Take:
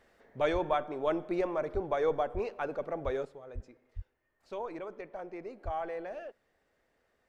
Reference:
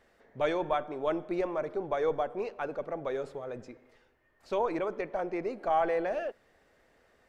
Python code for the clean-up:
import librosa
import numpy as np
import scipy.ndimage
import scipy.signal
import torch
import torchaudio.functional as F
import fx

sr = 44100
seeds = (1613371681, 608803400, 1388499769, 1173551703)

y = fx.fix_deplosive(x, sr, at_s=(0.52, 1.73, 2.33, 3.04, 3.54, 3.95, 5.64))
y = fx.fix_level(y, sr, at_s=3.25, step_db=9.0)